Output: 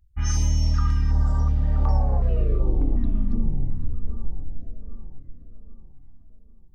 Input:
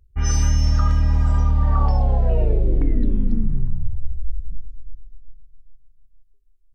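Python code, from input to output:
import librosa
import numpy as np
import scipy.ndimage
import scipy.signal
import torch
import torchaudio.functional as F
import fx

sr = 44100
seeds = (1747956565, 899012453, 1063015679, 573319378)

y = fx.vibrato(x, sr, rate_hz=0.62, depth_cents=49.0)
y = fx.echo_wet_lowpass(y, sr, ms=789, feedback_pct=44, hz=1900.0, wet_db=-14)
y = fx.filter_held_notch(y, sr, hz=2.7, low_hz=480.0, high_hz=3300.0)
y = F.gain(torch.from_numpy(y), -3.5).numpy()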